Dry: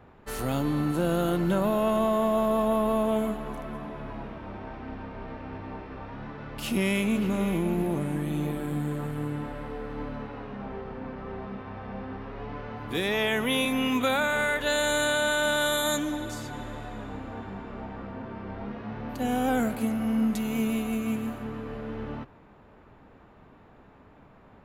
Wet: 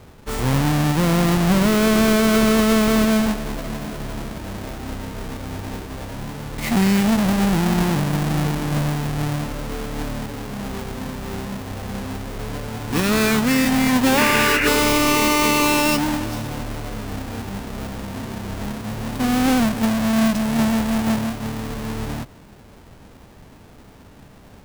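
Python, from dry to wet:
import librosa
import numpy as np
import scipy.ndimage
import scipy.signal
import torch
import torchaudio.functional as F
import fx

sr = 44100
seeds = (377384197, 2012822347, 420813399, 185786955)

y = fx.halfwave_hold(x, sr)
y = fx.formant_shift(y, sr, semitones=-5)
y = fx.spec_paint(y, sr, seeds[0], shape='noise', start_s=14.17, length_s=0.51, low_hz=1400.0, high_hz=2900.0, level_db=-26.0)
y = y * 10.0 ** (4.0 / 20.0)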